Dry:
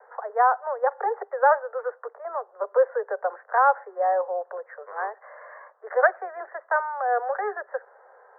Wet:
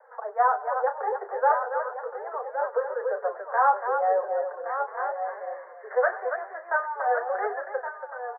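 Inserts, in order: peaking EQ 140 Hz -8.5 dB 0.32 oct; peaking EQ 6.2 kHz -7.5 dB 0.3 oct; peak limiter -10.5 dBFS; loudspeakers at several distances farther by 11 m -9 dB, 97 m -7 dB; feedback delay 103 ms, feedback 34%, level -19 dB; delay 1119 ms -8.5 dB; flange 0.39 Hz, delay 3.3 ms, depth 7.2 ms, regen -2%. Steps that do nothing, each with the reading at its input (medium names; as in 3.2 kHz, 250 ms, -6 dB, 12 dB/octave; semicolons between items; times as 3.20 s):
peaking EQ 140 Hz: input has nothing below 360 Hz; peaking EQ 6.2 kHz: input has nothing above 1.9 kHz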